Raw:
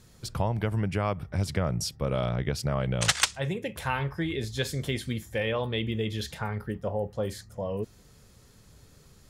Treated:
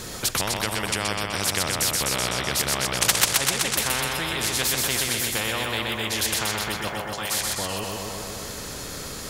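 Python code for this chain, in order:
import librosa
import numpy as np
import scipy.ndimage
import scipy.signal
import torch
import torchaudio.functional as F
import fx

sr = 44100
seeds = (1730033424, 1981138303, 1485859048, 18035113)

y = fx.highpass(x, sr, hz=fx.line((6.87, 440.0), (7.39, 1500.0)), slope=24, at=(6.87, 7.39), fade=0.02)
y = fx.echo_feedback(y, sr, ms=126, feedback_pct=54, wet_db=-6.0)
y = fx.spectral_comp(y, sr, ratio=4.0)
y = y * 10.0 ** (5.0 / 20.0)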